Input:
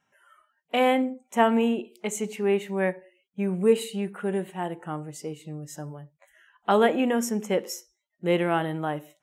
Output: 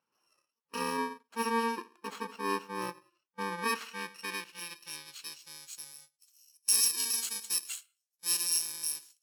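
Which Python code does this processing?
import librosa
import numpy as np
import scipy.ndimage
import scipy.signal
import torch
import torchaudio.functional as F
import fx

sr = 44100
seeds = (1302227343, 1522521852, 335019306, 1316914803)

y = fx.bit_reversed(x, sr, seeds[0], block=64)
y = fx.filter_sweep_bandpass(y, sr, from_hz=970.0, to_hz=7000.0, start_s=3.23, end_s=5.88, q=1.2)
y = y * librosa.db_to_amplitude(2.5)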